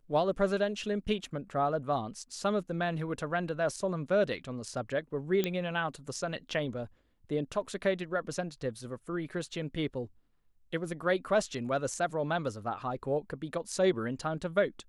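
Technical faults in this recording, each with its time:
5.44 s: pop -15 dBFS

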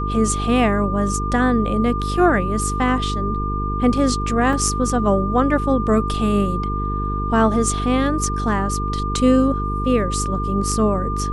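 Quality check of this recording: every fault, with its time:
buzz 50 Hz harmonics 9 -24 dBFS
whine 1.2 kHz -25 dBFS
4.53 s: dropout 2.1 ms

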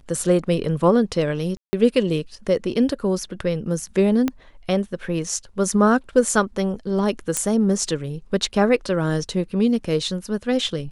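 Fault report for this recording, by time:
1.57–1.73 s: dropout 160 ms
4.28 s: pop -10 dBFS
7.37 s: pop -6 dBFS

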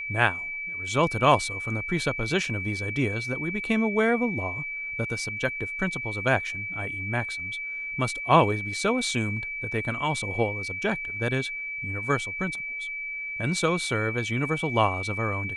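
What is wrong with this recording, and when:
whine 2.3 kHz -31 dBFS

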